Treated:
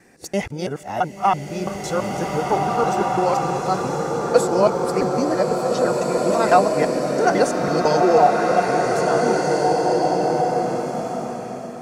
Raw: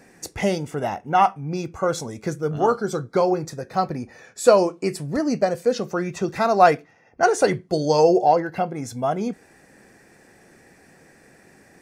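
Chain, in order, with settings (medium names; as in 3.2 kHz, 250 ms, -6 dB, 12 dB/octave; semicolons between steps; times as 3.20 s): time reversed locally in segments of 167 ms; swelling reverb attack 2080 ms, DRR -1.5 dB; trim -1 dB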